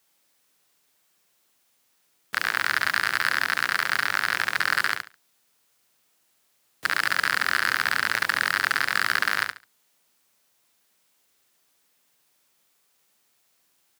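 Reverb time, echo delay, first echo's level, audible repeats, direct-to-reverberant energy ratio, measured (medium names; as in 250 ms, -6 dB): no reverb, 70 ms, -6.0 dB, 3, no reverb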